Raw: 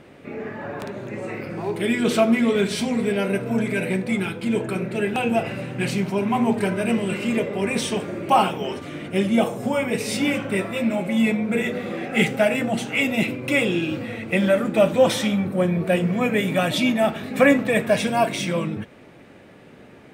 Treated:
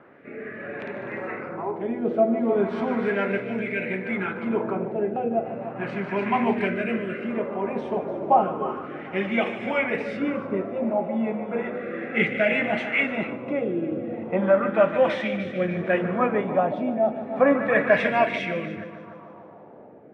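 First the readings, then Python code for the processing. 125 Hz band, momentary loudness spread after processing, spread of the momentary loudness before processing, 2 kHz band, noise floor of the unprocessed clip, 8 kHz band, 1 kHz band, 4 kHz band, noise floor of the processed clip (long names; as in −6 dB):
−7.5 dB, 11 LU, 11 LU, −1.5 dB, −47 dBFS, below −25 dB, −0.5 dB, −11.5 dB, −45 dBFS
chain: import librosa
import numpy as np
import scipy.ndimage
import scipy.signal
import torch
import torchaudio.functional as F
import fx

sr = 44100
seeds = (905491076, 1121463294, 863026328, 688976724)

p1 = fx.highpass(x, sr, hz=320.0, slope=6)
p2 = p1 + fx.echo_heads(p1, sr, ms=149, heads='first and second', feedback_pct=51, wet_db=-13.5, dry=0)
p3 = fx.rotary(p2, sr, hz=0.6)
y = fx.filter_lfo_lowpass(p3, sr, shape='sine', hz=0.34, low_hz=810.0, high_hz=2200.0, q=2.2)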